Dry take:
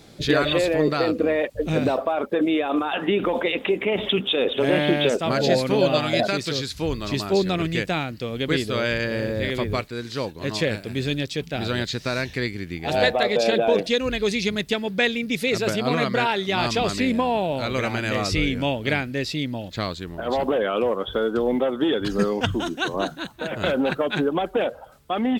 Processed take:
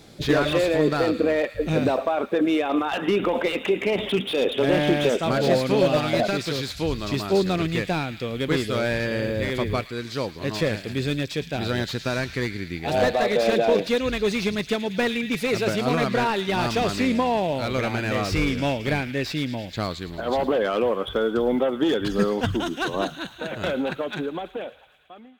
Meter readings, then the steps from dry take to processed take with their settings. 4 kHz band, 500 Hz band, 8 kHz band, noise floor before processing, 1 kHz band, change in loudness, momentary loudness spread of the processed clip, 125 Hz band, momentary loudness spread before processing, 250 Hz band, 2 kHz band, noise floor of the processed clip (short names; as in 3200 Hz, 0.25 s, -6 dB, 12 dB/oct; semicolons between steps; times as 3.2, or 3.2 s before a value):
-3.0 dB, -0.5 dB, -1.5 dB, -42 dBFS, -0.5 dB, -0.5 dB, 8 LU, +0.5 dB, 8 LU, -0.5 dB, -2.0 dB, -43 dBFS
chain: ending faded out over 2.44 s; thin delay 0.11 s, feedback 74%, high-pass 1800 Hz, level -14 dB; slew limiter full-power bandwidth 140 Hz